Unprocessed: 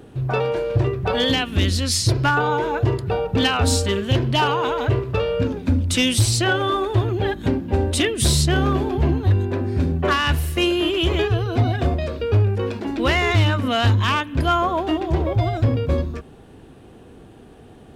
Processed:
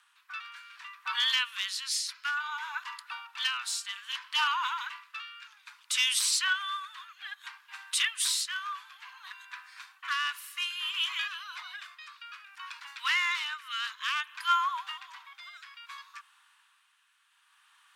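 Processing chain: steep high-pass 1000 Hz 72 dB/oct; hard clip -9.5 dBFS, distortion -52 dB; rotary speaker horn 0.6 Hz; gain -3.5 dB

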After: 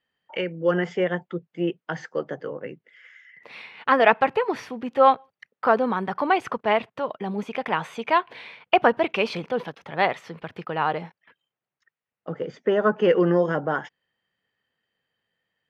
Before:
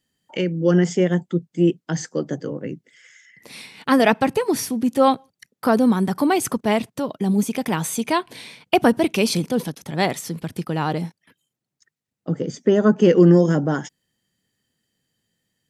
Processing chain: EQ curve 290 Hz 0 dB, 460 Hz +10 dB, 1200 Hz +15 dB, 2800 Hz +11 dB, 9300 Hz -19 dB; gain -11.5 dB

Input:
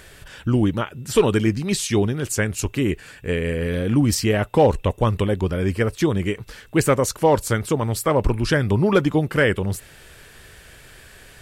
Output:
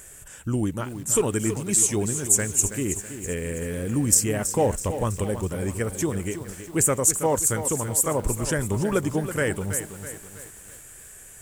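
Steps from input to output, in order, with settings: resonant high shelf 5700 Hz +10.5 dB, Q 3; lo-fi delay 0.326 s, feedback 55%, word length 6-bit, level -10 dB; gain -6.5 dB

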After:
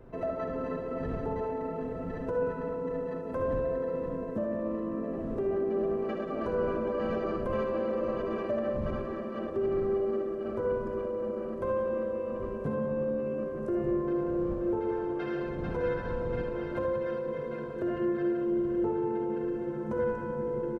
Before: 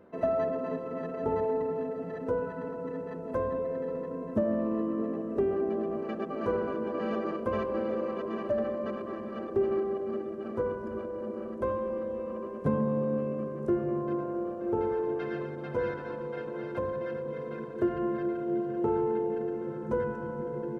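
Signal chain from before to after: wind noise 190 Hz -45 dBFS; limiter -24 dBFS, peak gain reduction 8 dB; loudspeakers at several distances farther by 27 m -12 dB, 62 m -11 dB; on a send at -6 dB: reverb, pre-delay 20 ms

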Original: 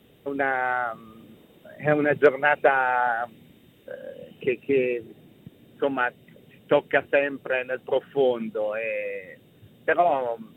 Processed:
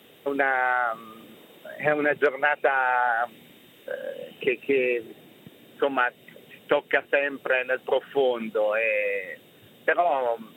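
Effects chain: HPF 630 Hz 6 dB/oct; compressor 4:1, threshold -28 dBFS, peak gain reduction 11.5 dB; gain +8.5 dB

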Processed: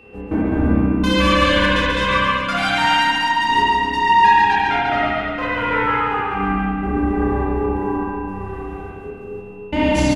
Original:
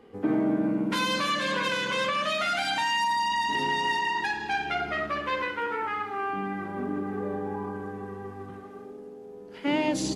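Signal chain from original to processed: octaver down 2 oct, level -2 dB; step gate "xx.x.xx...xxxx" 145 bpm -60 dB; on a send: bouncing-ball echo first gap 0.14 s, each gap 0.8×, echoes 5; on the sum: spring tank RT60 1.7 s, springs 31/58 ms, chirp 80 ms, DRR -6 dB; whine 2700 Hz -50 dBFS; gain +3 dB

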